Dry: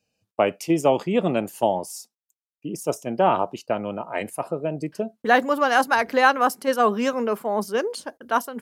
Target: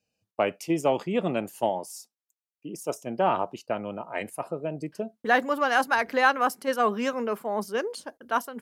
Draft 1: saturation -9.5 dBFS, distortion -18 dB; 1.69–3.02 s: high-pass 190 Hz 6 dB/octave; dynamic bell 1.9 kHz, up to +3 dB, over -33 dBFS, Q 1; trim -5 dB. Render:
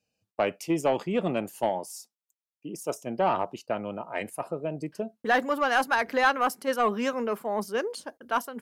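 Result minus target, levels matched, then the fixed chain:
saturation: distortion +13 dB
saturation -1.5 dBFS, distortion -31 dB; 1.69–3.02 s: high-pass 190 Hz 6 dB/octave; dynamic bell 1.9 kHz, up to +3 dB, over -33 dBFS, Q 1; trim -5 dB

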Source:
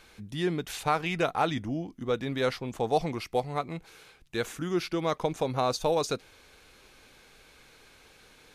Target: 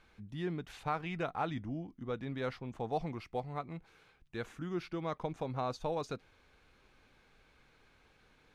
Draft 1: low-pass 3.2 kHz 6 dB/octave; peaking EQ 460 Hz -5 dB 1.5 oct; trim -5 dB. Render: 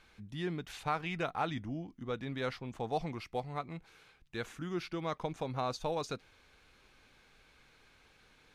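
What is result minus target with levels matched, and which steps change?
4 kHz band +4.5 dB
change: low-pass 1.4 kHz 6 dB/octave

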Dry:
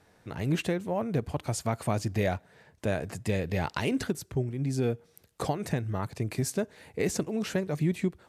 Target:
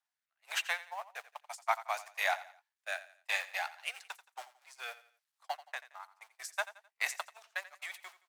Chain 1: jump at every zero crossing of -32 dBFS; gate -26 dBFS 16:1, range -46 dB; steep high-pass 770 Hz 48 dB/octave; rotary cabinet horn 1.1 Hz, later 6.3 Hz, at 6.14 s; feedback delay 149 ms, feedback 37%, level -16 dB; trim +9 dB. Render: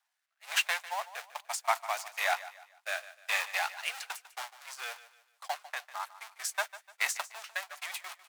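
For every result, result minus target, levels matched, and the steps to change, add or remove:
echo 63 ms late; jump at every zero crossing: distortion +10 dB
change: feedback delay 86 ms, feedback 37%, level -16 dB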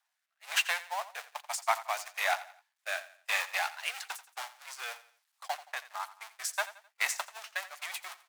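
jump at every zero crossing: distortion +10 dB
change: jump at every zero crossing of -43 dBFS

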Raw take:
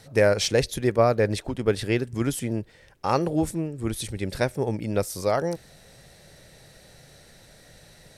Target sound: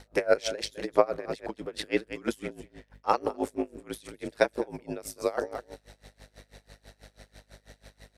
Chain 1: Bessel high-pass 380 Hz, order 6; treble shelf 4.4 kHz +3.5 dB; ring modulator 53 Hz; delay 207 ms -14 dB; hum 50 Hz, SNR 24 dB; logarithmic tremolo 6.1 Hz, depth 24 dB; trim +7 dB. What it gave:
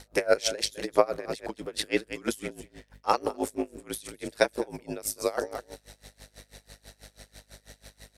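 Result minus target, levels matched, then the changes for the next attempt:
8 kHz band +7.0 dB
change: treble shelf 4.4 kHz -7.5 dB

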